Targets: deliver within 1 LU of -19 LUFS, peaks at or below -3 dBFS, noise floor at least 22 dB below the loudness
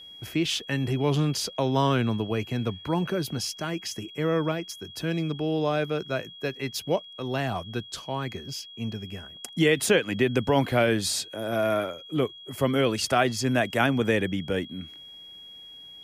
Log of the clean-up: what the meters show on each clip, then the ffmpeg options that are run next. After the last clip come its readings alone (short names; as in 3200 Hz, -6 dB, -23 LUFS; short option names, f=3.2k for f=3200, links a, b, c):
steady tone 3300 Hz; tone level -43 dBFS; loudness -27.0 LUFS; peak -8.5 dBFS; loudness target -19.0 LUFS
-> -af "bandreject=f=3.3k:w=30"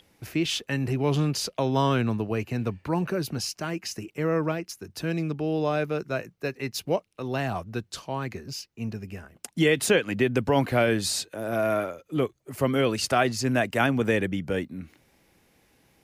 steady tone none; loudness -27.0 LUFS; peak -8.5 dBFS; loudness target -19.0 LUFS
-> -af "volume=8dB,alimiter=limit=-3dB:level=0:latency=1"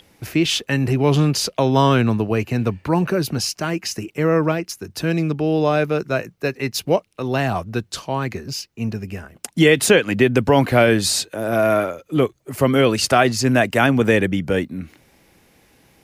loudness -19.0 LUFS; peak -3.0 dBFS; noise floor -61 dBFS